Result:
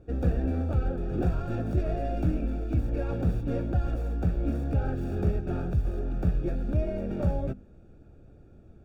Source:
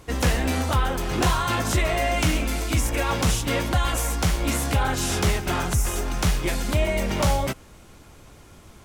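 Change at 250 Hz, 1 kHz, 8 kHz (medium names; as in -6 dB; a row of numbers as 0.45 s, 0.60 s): -3.5 dB, -15.0 dB, under -30 dB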